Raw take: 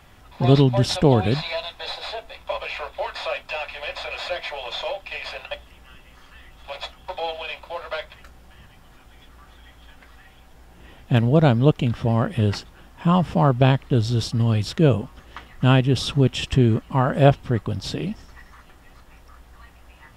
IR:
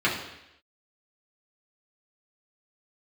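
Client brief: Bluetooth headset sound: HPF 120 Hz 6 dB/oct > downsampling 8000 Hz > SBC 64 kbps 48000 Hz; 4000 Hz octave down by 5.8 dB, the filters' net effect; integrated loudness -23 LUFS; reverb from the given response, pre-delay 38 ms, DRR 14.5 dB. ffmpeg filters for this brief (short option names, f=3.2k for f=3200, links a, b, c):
-filter_complex "[0:a]equalizer=f=4k:t=o:g=-7.5,asplit=2[a][b];[1:a]atrim=start_sample=2205,adelay=38[c];[b][c]afir=irnorm=-1:irlink=0,volume=-29.5dB[d];[a][d]amix=inputs=2:normalize=0,highpass=f=120:p=1,aresample=8000,aresample=44100,volume=0.5dB" -ar 48000 -c:a sbc -b:a 64k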